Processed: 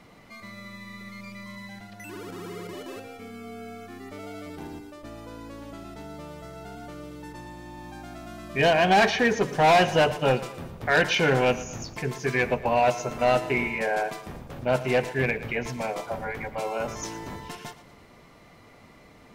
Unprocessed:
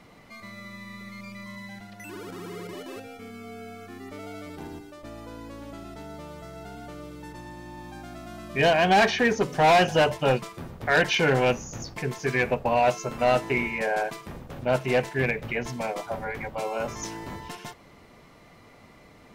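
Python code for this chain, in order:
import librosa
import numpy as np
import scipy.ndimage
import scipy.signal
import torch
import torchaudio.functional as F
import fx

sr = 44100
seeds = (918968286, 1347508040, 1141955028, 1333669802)

y = fx.echo_feedback(x, sr, ms=115, feedback_pct=47, wet_db=-16.0)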